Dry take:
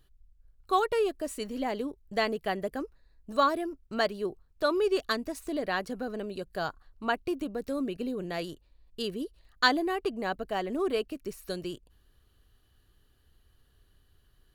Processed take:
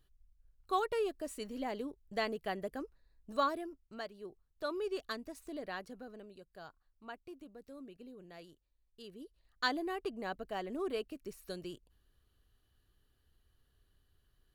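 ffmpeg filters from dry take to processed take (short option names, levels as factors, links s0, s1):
-af "volume=3.16,afade=t=out:st=3.4:d=0.68:silence=0.298538,afade=t=in:st=4.08:d=0.61:silence=0.473151,afade=t=out:st=5.64:d=0.79:silence=0.421697,afade=t=in:st=9.03:d=0.85:silence=0.298538"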